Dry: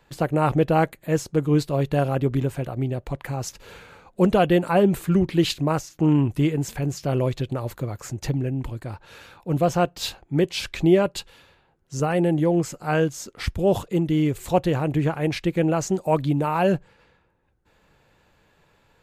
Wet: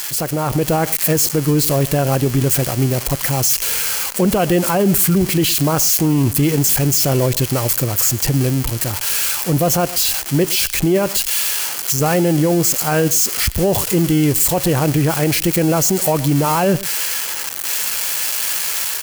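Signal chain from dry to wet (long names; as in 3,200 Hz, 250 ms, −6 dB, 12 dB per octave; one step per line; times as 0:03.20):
spike at every zero crossing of −17 dBFS
notch filter 3,700 Hz, Q 11
on a send: single-tap delay 112 ms −22.5 dB
on the sum: brickwall limiter −18.5 dBFS, peak gain reduction 11 dB
automatic gain control gain up to 5 dB
level +5.5 dB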